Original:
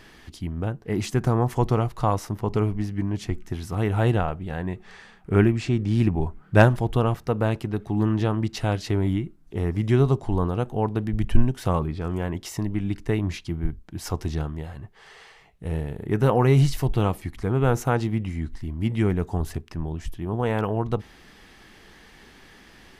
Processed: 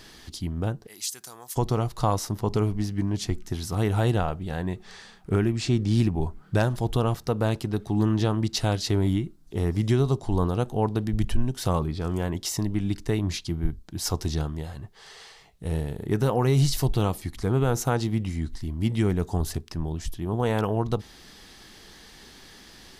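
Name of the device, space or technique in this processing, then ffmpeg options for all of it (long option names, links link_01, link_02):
over-bright horn tweeter: -filter_complex "[0:a]asettb=1/sr,asplit=3[link_01][link_02][link_03];[link_01]atrim=end=0.874[link_04];[link_02]atrim=start=0.87:end=1.56,asetpts=PTS-STARTPTS,afade=type=in:duration=0.004:curve=qsin,afade=type=out:start_time=0.686:duration=0.004:curve=qsin,aderivative[link_05];[link_03]atrim=start=1.556[link_06];[link_04][link_05]acrossfade=duration=0.004:curve1=hsin:curve2=qsin[link_07];[link_07][link_06]acrossfade=duration=0.004:curve1=qsin:curve2=hsin,highshelf=frequency=3200:width_type=q:width=1.5:gain=6.5,alimiter=limit=-11.5dB:level=0:latency=1:release=288"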